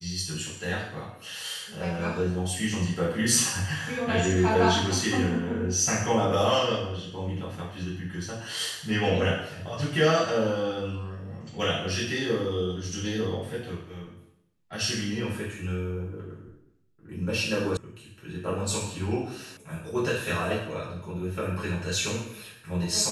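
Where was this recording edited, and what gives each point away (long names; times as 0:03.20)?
0:17.77: cut off before it has died away
0:19.57: cut off before it has died away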